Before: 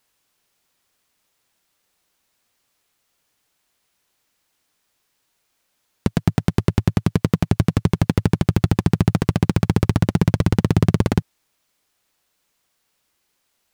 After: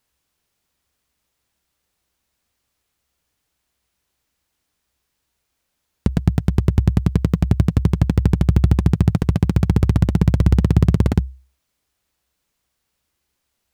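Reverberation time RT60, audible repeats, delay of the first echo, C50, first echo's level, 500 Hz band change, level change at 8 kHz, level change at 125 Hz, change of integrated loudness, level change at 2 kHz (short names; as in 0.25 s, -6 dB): none, none, none, none, none, -2.5 dB, n/a, +2.5 dB, +2.0 dB, -4.5 dB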